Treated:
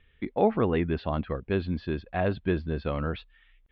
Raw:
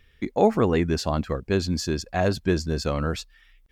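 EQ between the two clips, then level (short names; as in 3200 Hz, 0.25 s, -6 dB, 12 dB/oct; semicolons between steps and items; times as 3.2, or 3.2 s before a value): steep low-pass 3600 Hz 48 dB/oct; -4.0 dB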